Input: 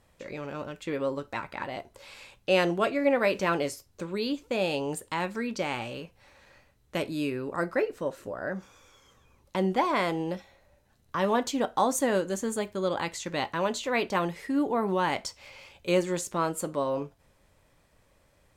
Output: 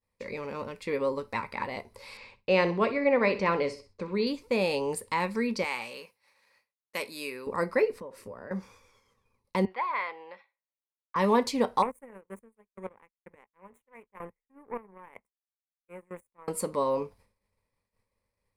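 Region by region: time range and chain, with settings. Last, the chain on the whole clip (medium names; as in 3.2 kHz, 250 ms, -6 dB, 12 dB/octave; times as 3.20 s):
2.17–4.27 s: distance through air 130 m + feedback delay 63 ms, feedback 33%, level -14 dB
5.64–7.47 s: high-pass 940 Hz 6 dB/octave + treble shelf 10 kHz +8.5 dB
8.00–8.51 s: band-stop 4.1 kHz, Q 10 + compression 12:1, threshold -38 dBFS + three bands expanded up and down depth 70%
9.65–11.16 s: high-pass 1.1 kHz + distance through air 430 m
11.82–16.48 s: square tremolo 2.1 Hz, depth 60%, duty 20% + power-law waveshaper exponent 2 + Butterworth band-stop 4.6 kHz, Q 0.66
whole clip: expander -51 dBFS; rippled EQ curve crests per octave 0.9, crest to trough 9 dB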